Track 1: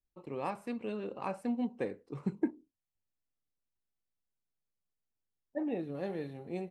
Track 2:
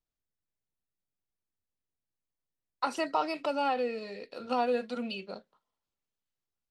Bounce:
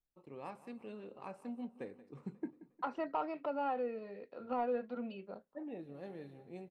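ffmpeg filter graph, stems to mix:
-filter_complex "[0:a]volume=-10dB,asplit=2[a][b];[b]volume=-17.5dB[c];[1:a]lowpass=1.5k,volume=-5.5dB[d];[c]aecho=0:1:179|358|537|716|895|1074|1253|1432:1|0.56|0.314|0.176|0.0983|0.0551|0.0308|0.0173[e];[a][d][e]amix=inputs=3:normalize=0,asoftclip=type=tanh:threshold=-23.5dB"

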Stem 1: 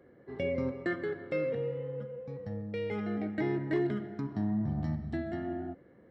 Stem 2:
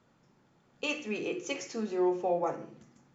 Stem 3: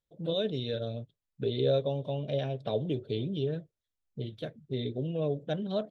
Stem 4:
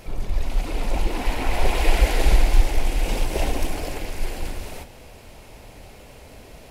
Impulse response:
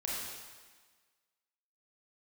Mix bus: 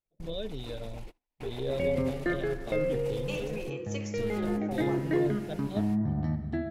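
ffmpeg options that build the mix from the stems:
-filter_complex "[0:a]highshelf=f=4k:g=-7.5,adelay=1400,volume=3dB[a];[1:a]acompressor=threshold=-32dB:ratio=6,adelay=2450,volume=-3dB[b];[2:a]volume=-6.5dB,asplit=2[c][d];[3:a]acompressor=threshold=-22dB:ratio=6,alimiter=level_in=6dB:limit=-24dB:level=0:latency=1:release=55,volume=-6dB,volume=-5.5dB[e];[d]apad=whole_len=295894[f];[e][f]sidechaingate=range=-33dB:threshold=-52dB:ratio=16:detection=peak[g];[a][b][c][g]amix=inputs=4:normalize=0,agate=range=-15dB:threshold=-52dB:ratio=16:detection=peak"

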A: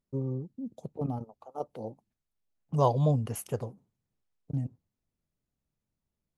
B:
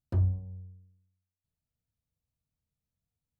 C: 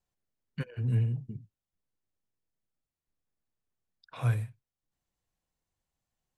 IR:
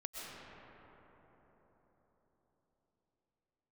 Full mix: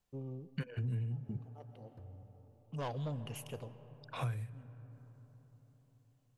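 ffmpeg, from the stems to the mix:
-filter_complex "[0:a]equalizer=f=2.8k:w=1.5:g=14.5,asoftclip=type=tanh:threshold=-22.5dB,volume=-11.5dB,asplit=2[a][b];[b]volume=-11.5dB[c];[1:a]alimiter=level_in=5dB:limit=-24dB:level=0:latency=1,volume=-5dB,adelay=1850,volume=-18.5dB[d];[2:a]volume=2dB,asplit=3[e][f][g];[f]volume=-24dB[h];[g]apad=whole_len=281298[i];[a][i]sidechaincompress=threshold=-38dB:ratio=8:attack=16:release=1370[j];[3:a]atrim=start_sample=2205[k];[c][h]amix=inputs=2:normalize=0[l];[l][k]afir=irnorm=-1:irlink=0[m];[j][d][e][m]amix=inputs=4:normalize=0,acompressor=threshold=-34dB:ratio=8"

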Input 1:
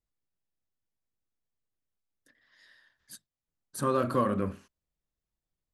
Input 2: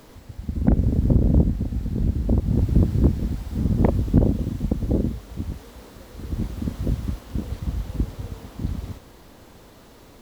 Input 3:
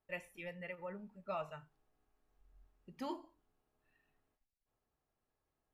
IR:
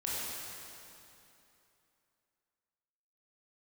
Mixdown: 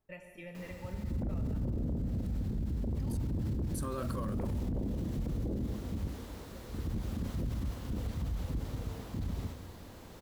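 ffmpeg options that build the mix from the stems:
-filter_complex "[0:a]bass=f=250:g=5,treble=f=4k:g=9,acrusher=bits=7:mix=0:aa=0.000001,volume=-4dB[a];[1:a]adelay=550,volume=-5dB,asplit=2[b][c];[c]volume=-15dB[d];[2:a]acompressor=threshold=-47dB:ratio=4,lowshelf=f=300:g=9.5,volume=-3dB,asplit=2[e][f];[f]volume=-5dB[g];[3:a]atrim=start_sample=2205[h];[d][g]amix=inputs=2:normalize=0[i];[i][h]afir=irnorm=-1:irlink=0[j];[a][b][e][j]amix=inputs=4:normalize=0,alimiter=level_in=4dB:limit=-24dB:level=0:latency=1:release=28,volume=-4dB"

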